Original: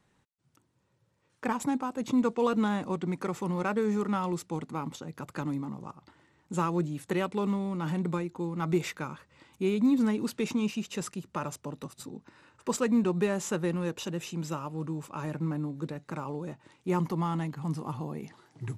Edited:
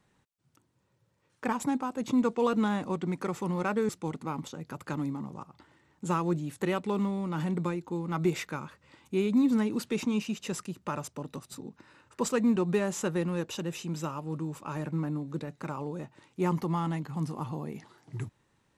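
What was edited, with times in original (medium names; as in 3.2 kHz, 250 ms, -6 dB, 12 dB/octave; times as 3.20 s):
3.89–4.37 s: delete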